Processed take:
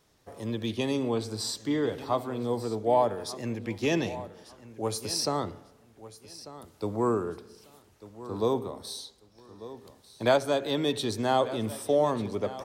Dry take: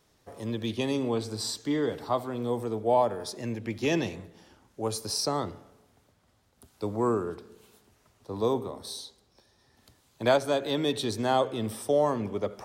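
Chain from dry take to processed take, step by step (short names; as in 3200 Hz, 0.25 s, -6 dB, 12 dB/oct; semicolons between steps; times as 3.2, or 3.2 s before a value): feedback echo 1.194 s, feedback 22%, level -16 dB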